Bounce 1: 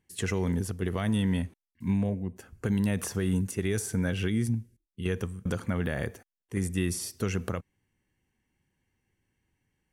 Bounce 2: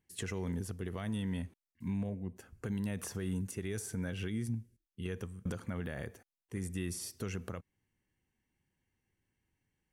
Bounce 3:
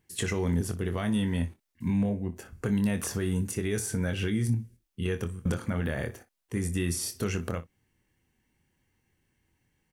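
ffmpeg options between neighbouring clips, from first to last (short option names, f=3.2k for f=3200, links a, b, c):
-af "alimiter=limit=-21.5dB:level=0:latency=1:release=238,volume=-5.5dB"
-af "aecho=1:1:24|60:0.398|0.133,volume=8.5dB"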